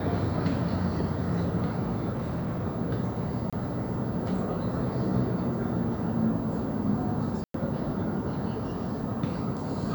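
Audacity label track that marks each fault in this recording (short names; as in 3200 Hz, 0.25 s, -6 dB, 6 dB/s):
2.120000	2.650000	clipped -27.5 dBFS
3.500000	3.530000	gap 26 ms
7.440000	7.540000	gap 0.103 s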